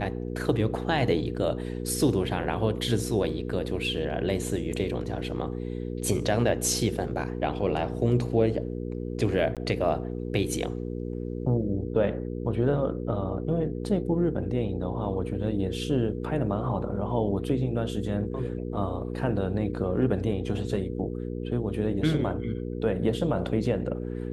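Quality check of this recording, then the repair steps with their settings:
mains hum 60 Hz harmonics 8 −33 dBFS
0:09.55–0:09.57: drop-out 17 ms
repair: hum removal 60 Hz, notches 8
repair the gap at 0:09.55, 17 ms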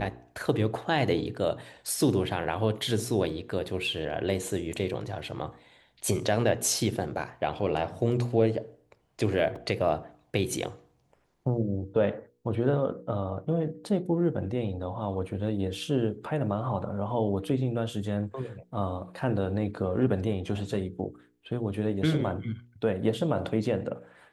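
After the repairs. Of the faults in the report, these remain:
none of them is left

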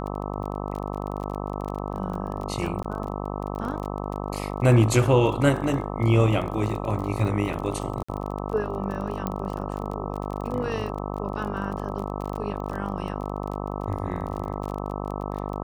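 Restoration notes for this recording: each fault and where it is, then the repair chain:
mains buzz 50 Hz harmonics 26 −31 dBFS
surface crackle 29 per second −31 dBFS
0:02.83–0:02.84: drop-out 14 ms
0:08.03–0:08.09: drop-out 55 ms
0:09.27: click −15 dBFS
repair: click removal
hum removal 50 Hz, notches 26
repair the gap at 0:02.83, 14 ms
repair the gap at 0:08.03, 55 ms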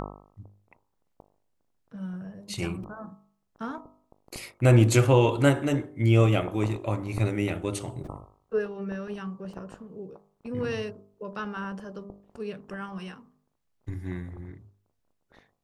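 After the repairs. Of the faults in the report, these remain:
none of them is left

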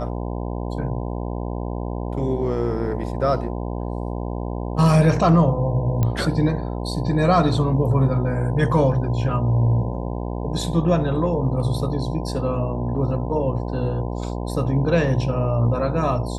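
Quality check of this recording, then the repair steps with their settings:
mains buzz 60 Hz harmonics 17 −27 dBFS
0:06.03: click −10 dBFS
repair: click removal
hum removal 60 Hz, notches 17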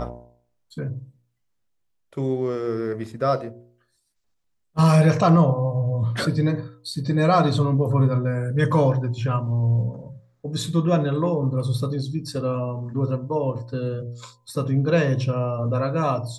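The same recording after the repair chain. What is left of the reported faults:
none of them is left

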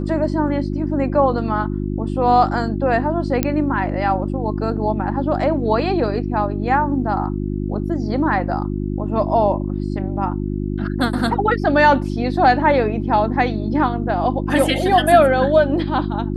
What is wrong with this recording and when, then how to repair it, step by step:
mains hum 50 Hz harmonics 7 −23 dBFS
0:03.43: click −3 dBFS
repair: click removal
hum removal 50 Hz, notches 7

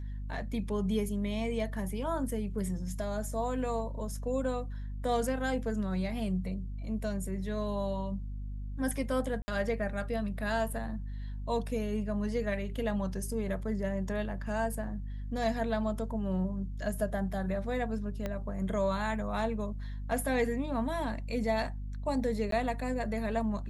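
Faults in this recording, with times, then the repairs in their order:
mains hum 50 Hz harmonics 5 −38 dBFS
0:09.42–0:09.48: drop-out 60 ms
0:18.26: click −21 dBFS
0:22.51–0:22.52: drop-out 13 ms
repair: click removal
hum removal 50 Hz, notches 5
repair the gap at 0:09.42, 60 ms
repair the gap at 0:22.51, 13 ms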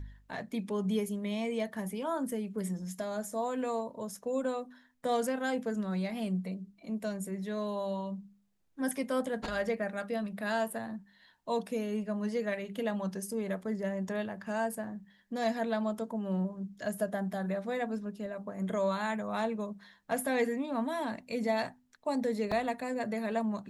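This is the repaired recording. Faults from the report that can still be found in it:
0:18.26: click

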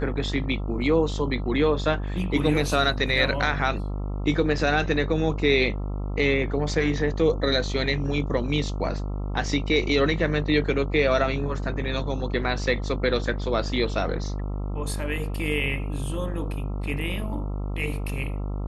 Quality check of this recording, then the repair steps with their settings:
mains buzz 50 Hz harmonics 27 −29 dBFS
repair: hum removal 50 Hz, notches 27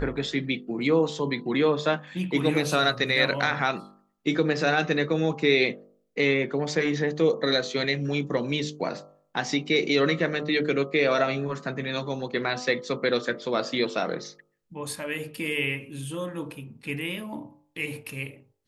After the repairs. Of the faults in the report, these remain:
none of them is left

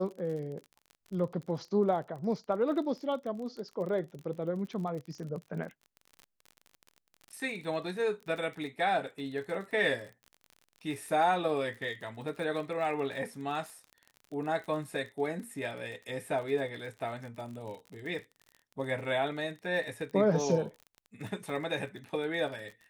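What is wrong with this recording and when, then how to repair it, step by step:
surface crackle 37 per second −40 dBFS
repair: click removal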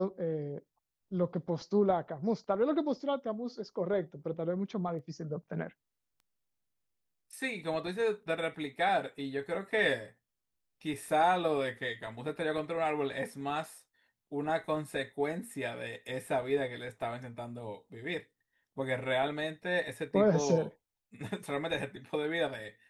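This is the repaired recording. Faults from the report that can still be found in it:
none of them is left

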